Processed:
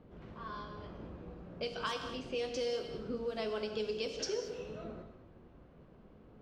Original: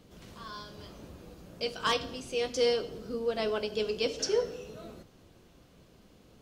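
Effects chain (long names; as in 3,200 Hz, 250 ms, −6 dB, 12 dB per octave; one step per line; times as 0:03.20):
low-pass that shuts in the quiet parts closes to 1,400 Hz, open at −24.5 dBFS
downward compressor 12 to 1, threshold −34 dBFS, peak gain reduction 12 dB
reverb whose tail is shaped and stops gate 250 ms flat, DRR 6.5 dB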